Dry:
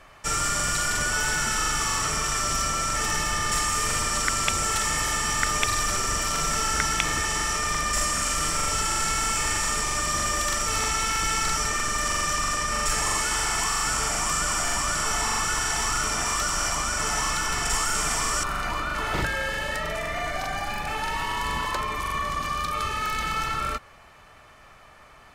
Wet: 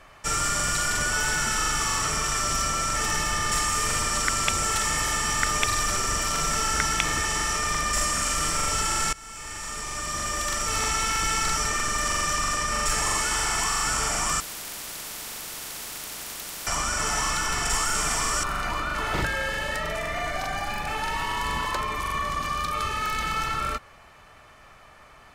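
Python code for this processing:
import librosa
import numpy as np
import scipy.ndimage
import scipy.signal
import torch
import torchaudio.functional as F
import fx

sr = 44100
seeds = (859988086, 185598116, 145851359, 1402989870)

y = fx.spectral_comp(x, sr, ratio=10.0, at=(14.4, 16.67))
y = fx.edit(y, sr, fx.fade_in_from(start_s=9.13, length_s=1.76, floor_db=-21.5), tone=tone)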